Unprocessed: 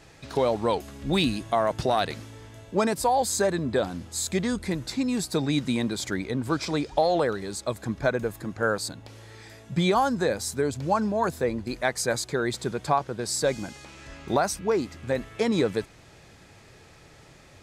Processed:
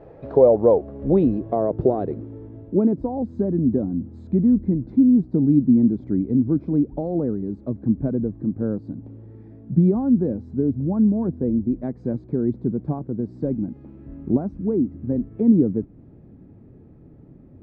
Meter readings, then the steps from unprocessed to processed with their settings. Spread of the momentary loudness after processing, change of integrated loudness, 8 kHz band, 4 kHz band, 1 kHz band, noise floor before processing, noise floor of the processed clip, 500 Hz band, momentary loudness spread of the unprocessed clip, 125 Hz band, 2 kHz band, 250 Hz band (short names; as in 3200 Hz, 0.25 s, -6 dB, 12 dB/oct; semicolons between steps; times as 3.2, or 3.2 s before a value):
12 LU, +5.5 dB, under -40 dB, under -35 dB, -8.5 dB, -52 dBFS, -47 dBFS, +3.0 dB, 9 LU, +7.5 dB, under -20 dB, +10.0 dB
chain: low-pass sweep 530 Hz -> 260 Hz, 0.9–3.37; air absorption 56 m; mismatched tape noise reduction encoder only; gain +4.5 dB